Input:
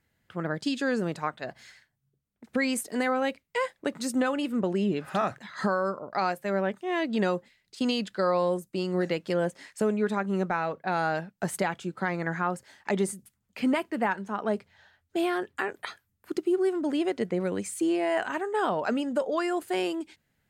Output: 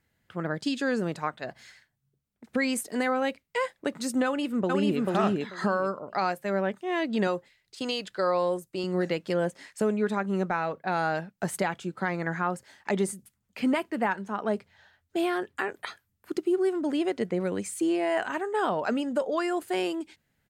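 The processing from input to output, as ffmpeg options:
ffmpeg -i in.wav -filter_complex "[0:a]asplit=2[link_01][link_02];[link_02]afade=type=in:start_time=4.25:duration=0.01,afade=type=out:start_time=5:duration=0.01,aecho=0:1:440|880|1320:0.891251|0.133688|0.0200531[link_03];[link_01][link_03]amix=inputs=2:normalize=0,asettb=1/sr,asplit=3[link_04][link_05][link_06];[link_04]atrim=end=7.274[link_07];[link_05]atrim=start=7.27:end=8.84,asetpts=PTS-STARTPTS,afade=type=in:duration=0.004:curve=qsin,afade=type=out:start_time=1.566:duration=0.004:curve=qsin,equalizer=frequency=220:width_type=o:width=0.4:gain=-14[link_08];[link_06]atrim=start=8.836[link_09];[link_07][link_08]acrossfade=duration=0.004:curve1=hsin:curve2=qsin[link_10];[link_10][link_09]acrossfade=duration=0.004:curve1=qsin:curve2=hsin" out.wav

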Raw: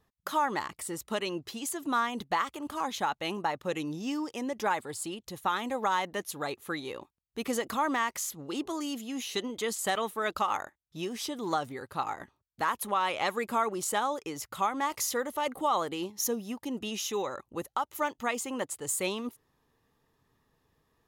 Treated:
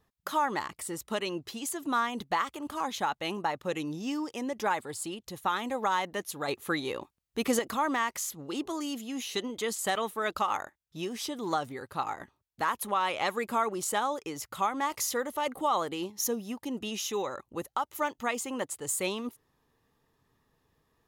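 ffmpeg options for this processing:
ffmpeg -i in.wav -filter_complex "[0:a]asplit=3[link_01][link_02][link_03];[link_01]atrim=end=6.482[link_04];[link_02]atrim=start=6.478:end=7.592,asetpts=PTS-STARTPTS,volume=4.5dB[link_05];[link_03]atrim=start=7.588[link_06];[link_04][link_05]acrossfade=duration=0.004:curve1=hsin:curve2=hsin[link_07];[link_07][link_06]acrossfade=duration=0.004:curve1=hsin:curve2=hsin" out.wav

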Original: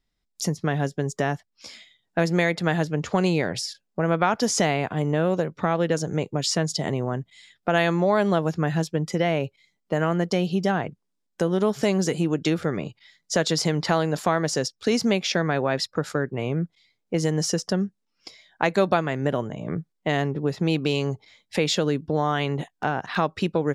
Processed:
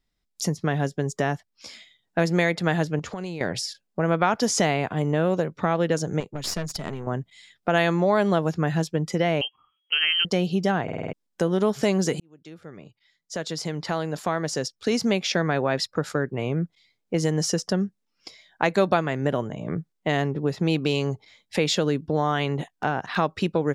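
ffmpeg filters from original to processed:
ffmpeg -i in.wav -filter_complex "[0:a]asettb=1/sr,asplit=3[link_01][link_02][link_03];[link_01]atrim=end=2.994[link_04];[link_02]atrim=start=2.99:end=3.41,asetpts=PTS-STARTPTS,afade=type=in:duration=0.004:curve=qsin,afade=type=out:start_time=0.416:duration=0.004:curve=qsin,acompressor=threshold=-30dB:ratio=5:attack=3.2:release=140:knee=1:detection=peak[link_05];[link_03]atrim=start=3.406[link_06];[link_04][link_05]acrossfade=duration=0.004:curve1=hsin:curve2=qsin[link_07];[link_07][link_06]acrossfade=duration=0.004:curve1=qsin:curve2=hsin,asettb=1/sr,asplit=3[link_08][link_09][link_10];[link_08]atrim=end=6.204[link_11];[link_09]atrim=start=6.2:end=7.07,asetpts=PTS-STARTPTS,afade=type=in:duration=0.004:curve=qsin,afade=type=out:start_time=0.866:duration=0.004:curve=qsin,aeval=exprs='(tanh(8.91*val(0)+0.8)-tanh(0.8))/8.91':channel_layout=same[link_12];[link_10]atrim=start=7.066[link_13];[link_11][link_12]acrossfade=duration=0.004:curve1=hsin:curve2=qsin[link_14];[link_14][link_13]acrossfade=duration=0.004:curve1=qsin:curve2=hsin,asettb=1/sr,asplit=3[link_15][link_16][link_17];[link_15]atrim=end=9.414[link_18];[link_16]atrim=start=9.41:end=10.25,asetpts=PTS-STARTPTS,afade=type=in:duration=0.004:curve=qsin,afade=type=out:start_time=0.836:duration=0.004:curve=qsin,lowpass=frequency=2800:width_type=q:width=0.5098,lowpass=frequency=2800:width_type=q:width=0.6013,lowpass=frequency=2800:width_type=q:width=0.9,lowpass=frequency=2800:width_type=q:width=2.563,afreqshift=-3300[link_19];[link_17]atrim=start=10.246[link_20];[link_18][link_19]acrossfade=duration=0.004:curve1=hsin:curve2=qsin[link_21];[link_21][link_20]acrossfade=duration=0.004:curve1=qsin:curve2=hsin,asplit=8[link_22][link_23][link_24][link_25][link_26][link_27][link_28][link_29];[link_22]atrim=end=10.882[link_30];[link_23]atrim=start=10.828:end=10.882[link_31];[link_24]atrim=start=10.828:end=10.882[link_32];[link_25]atrim=start=10.828:end=10.882[link_33];[link_26]atrim=start=10.828:end=10.882[link_34];[link_27]atrim=start=10.828:end=10.882[link_35];[link_28]atrim=start=11.128:end=12.2,asetpts=PTS-STARTPTS,afade=type=out:start_time=1.068:duration=0.004:curve=hsin[link_36];[link_29]atrim=start=12.2,asetpts=PTS-STARTPTS,afade=type=in:duration=3.22[link_37];[link_30][link_31]acrossfade=duration=0.004:curve1=hsin:curve2=hsin[link_38];[link_38][link_32]acrossfade=duration=0.004:curve1=hsin:curve2=hsin[link_39];[link_39][link_33]acrossfade=duration=0.004:curve1=hsin:curve2=hsin[link_40];[link_40][link_34]acrossfade=duration=0.004:curve1=hsin:curve2=hsin[link_41];[link_41][link_35]acrossfade=duration=0.004:curve1=hsin:curve2=hsin[link_42];[link_36][link_37]concat=n=2:v=0:a=1[link_43];[link_42][link_43]acrossfade=duration=0.004:curve1=hsin:curve2=hsin" out.wav

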